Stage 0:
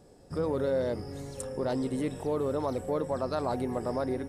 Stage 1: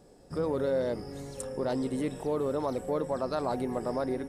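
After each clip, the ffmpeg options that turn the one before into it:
-af "equalizer=f=99:t=o:w=0.29:g=-13"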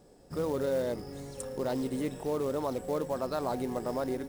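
-af "acrusher=bits=5:mode=log:mix=0:aa=0.000001,volume=-1.5dB"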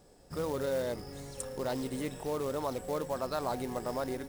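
-af "equalizer=f=290:t=o:w=2.6:g=-6,volume=2dB"

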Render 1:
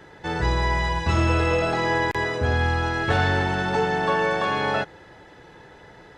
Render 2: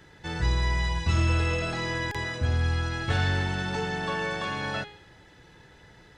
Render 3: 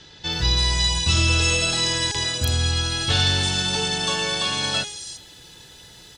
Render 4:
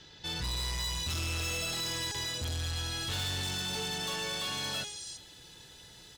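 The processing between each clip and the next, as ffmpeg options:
-af "equalizer=f=650:w=0.4:g=-10.5,bandreject=f=415.2:t=h:w=4,bandreject=f=830.4:t=h:w=4,bandreject=f=1.2456k:t=h:w=4,bandreject=f=1.6608k:t=h:w=4,bandreject=f=2.076k:t=h:w=4,bandreject=f=2.4912k:t=h:w=4,bandreject=f=2.9064k:t=h:w=4,bandreject=f=3.3216k:t=h:w=4,bandreject=f=3.7368k:t=h:w=4,bandreject=f=4.152k:t=h:w=4,bandreject=f=4.5672k:t=h:w=4,bandreject=f=4.9824k:t=h:w=4,bandreject=f=5.3976k:t=h:w=4,bandreject=f=5.8128k:t=h:w=4,bandreject=f=6.228k:t=h:w=4,bandreject=f=6.6432k:t=h:w=4,bandreject=f=7.0584k:t=h:w=4,bandreject=f=7.4736k:t=h:w=4,bandreject=f=7.8888k:t=h:w=4,bandreject=f=8.304k:t=h:w=4,bandreject=f=8.7192k:t=h:w=4,bandreject=f=9.1344k:t=h:w=4,bandreject=f=9.5496k:t=h:w=4,bandreject=f=9.9648k:t=h:w=4,bandreject=f=10.38k:t=h:w=4,bandreject=f=10.7952k:t=h:w=4,bandreject=f=11.2104k:t=h:w=4"
-filter_complex "[0:a]aexciter=amount=6.3:drive=6.3:freq=2.9k,acrossover=split=5600[a][b];[b]adelay=330[c];[a][c]amix=inputs=2:normalize=0,volume=2.5dB"
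-af "acrusher=bits=8:mode=log:mix=0:aa=0.000001,asoftclip=type=tanh:threshold=-24.5dB,volume=-7dB"

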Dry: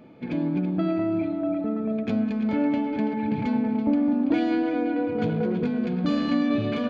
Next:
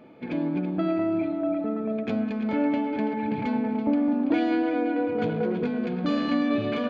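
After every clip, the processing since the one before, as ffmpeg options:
-af "bass=f=250:g=-7,treble=f=4k:g=-5,volume=1.5dB"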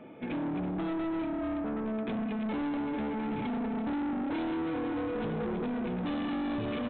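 -filter_complex "[0:a]acrossover=split=460|3000[a][b][c];[b]acompressor=threshold=-35dB:ratio=6[d];[a][d][c]amix=inputs=3:normalize=0,aresample=8000,asoftclip=type=tanh:threshold=-32dB,aresample=44100,volume=1.5dB"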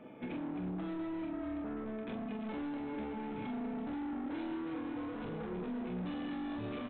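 -af "aecho=1:1:28|44:0.473|0.596,alimiter=level_in=5.5dB:limit=-24dB:level=0:latency=1:release=167,volume=-5.5dB,volume=-4.5dB"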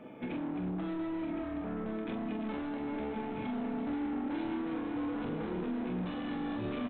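-af "aecho=1:1:1064:0.398,volume=3dB"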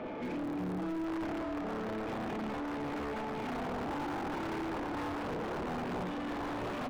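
-filter_complex "[0:a]aeval=exprs='(mod(35.5*val(0)+1,2)-1)/35.5':c=same,asplit=2[a][b];[b]highpass=f=720:p=1,volume=28dB,asoftclip=type=tanh:threshold=-31dB[c];[a][c]amix=inputs=2:normalize=0,lowpass=f=1k:p=1,volume=-6dB"

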